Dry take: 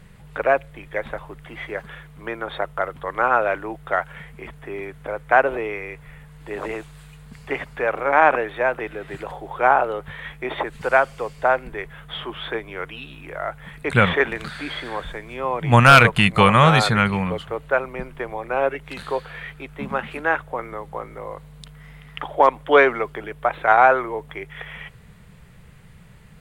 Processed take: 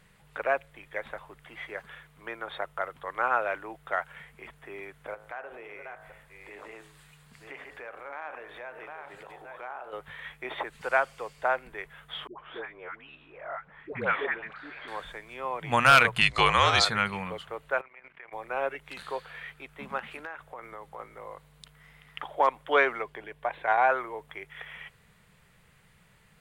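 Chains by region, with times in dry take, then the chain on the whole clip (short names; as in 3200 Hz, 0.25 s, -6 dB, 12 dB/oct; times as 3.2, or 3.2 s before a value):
5.14–9.93 reverse delay 0.493 s, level -9.5 dB + de-hum 53.45 Hz, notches 36 + compressor 2.5:1, threshold -35 dBFS
12.27–14.88 LPF 1900 Hz + bell 73 Hz -7.5 dB 2.8 oct + dispersion highs, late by 0.117 s, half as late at 610 Hz
16.21–16.85 LPF 8300 Hz + bell 5300 Hz +13.5 dB 1 oct + frequency shift -46 Hz
17.81–18.33 tilt -4 dB/oct + transient shaper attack -11 dB, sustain +12 dB + band-pass 2200 Hz, Q 2.7
19.99–20.99 compressor 8:1, threshold -27 dBFS + hard clip -20 dBFS
23.02–23.89 high shelf 5300 Hz -7 dB + notch 1300 Hz, Q 5
whole clip: low shelf 430 Hz -10.5 dB; notches 60/120 Hz; gain -6 dB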